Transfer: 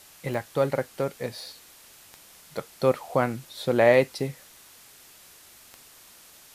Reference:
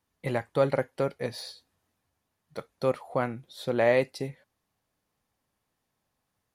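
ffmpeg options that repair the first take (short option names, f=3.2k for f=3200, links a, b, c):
-af "adeclick=t=4,afwtdn=0.0032,asetnsamples=n=441:p=0,asendcmd='1.9 volume volume -4.5dB',volume=0dB"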